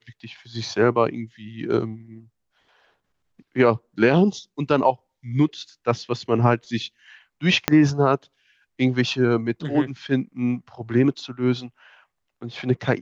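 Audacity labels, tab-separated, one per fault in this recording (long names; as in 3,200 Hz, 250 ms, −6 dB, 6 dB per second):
7.680000	7.680000	click −1 dBFS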